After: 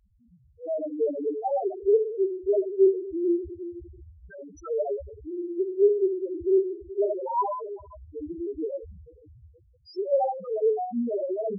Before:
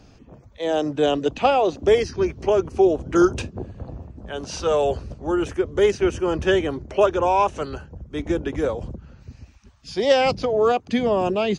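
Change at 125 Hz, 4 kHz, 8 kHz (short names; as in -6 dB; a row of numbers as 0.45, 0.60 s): under -15 dB, under -25 dB, n/a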